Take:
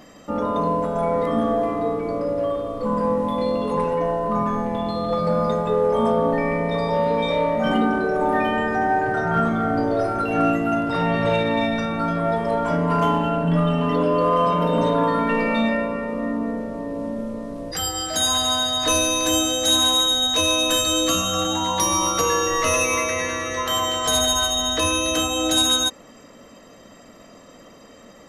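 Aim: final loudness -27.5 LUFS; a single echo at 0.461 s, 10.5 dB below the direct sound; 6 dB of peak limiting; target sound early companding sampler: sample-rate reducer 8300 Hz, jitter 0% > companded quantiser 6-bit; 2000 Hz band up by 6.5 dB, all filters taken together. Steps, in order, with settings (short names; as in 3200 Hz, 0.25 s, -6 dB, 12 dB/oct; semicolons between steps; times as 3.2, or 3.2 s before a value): bell 2000 Hz +8.5 dB; limiter -11.5 dBFS; echo 0.461 s -10.5 dB; sample-rate reducer 8300 Hz, jitter 0%; companded quantiser 6-bit; gain -7.5 dB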